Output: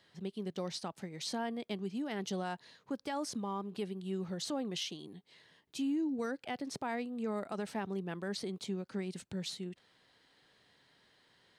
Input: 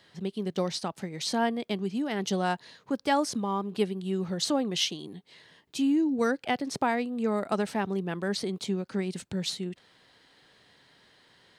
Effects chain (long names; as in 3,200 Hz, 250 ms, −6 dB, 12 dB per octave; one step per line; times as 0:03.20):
brickwall limiter −21 dBFS, peak gain reduction 8 dB
level −7.5 dB